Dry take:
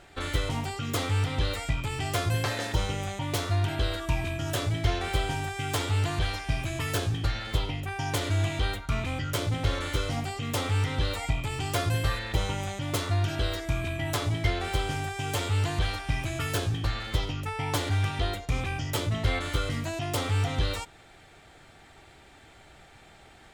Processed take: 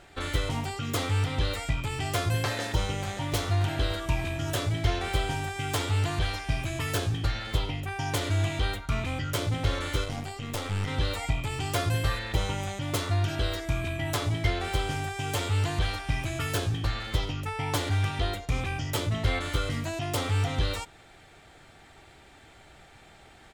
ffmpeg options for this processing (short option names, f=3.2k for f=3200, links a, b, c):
-filter_complex "[0:a]asplit=2[a][b];[b]afade=t=in:st=2.44:d=0.01,afade=t=out:st=3.29:d=0.01,aecho=0:1:580|1160|1740|2320|2900|3480|4060:0.266073|0.159644|0.0957861|0.0574717|0.034483|0.0206898|0.0124139[c];[a][c]amix=inputs=2:normalize=0,asettb=1/sr,asplit=3[d][e][f];[d]atrim=end=10.044[g];[e]atrim=start=10.04:end=10.88,asetpts=PTS-STARTPTS,afade=t=in:d=0.004:c=qsin,afade=t=out:st=0.836:d=0.004:c=qsin,aeval=exprs='(tanh(14.1*val(0)+0.7)-tanh(0.7))/14.1':c=same[h];[f]atrim=start=10.876[i];[g][h]acrossfade=d=0.004:c1=hsin:c2=qsin[j];[j][i]acrossfade=d=0.004:c1=qsin:c2=hsin"